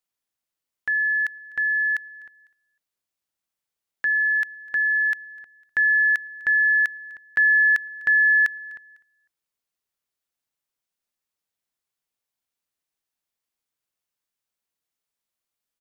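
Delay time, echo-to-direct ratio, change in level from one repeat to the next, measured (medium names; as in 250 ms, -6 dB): 251 ms, -23.5 dB, -9.0 dB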